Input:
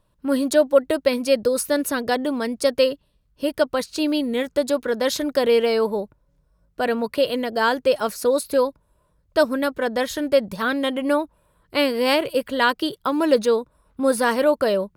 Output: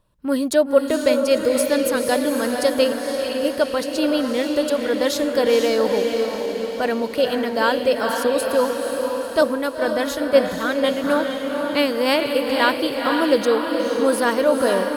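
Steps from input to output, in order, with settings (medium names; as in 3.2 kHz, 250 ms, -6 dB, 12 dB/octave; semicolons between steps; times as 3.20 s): echo that smears into a reverb 489 ms, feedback 57%, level -4 dB; 9.41–11.04 s: three bands expanded up and down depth 70%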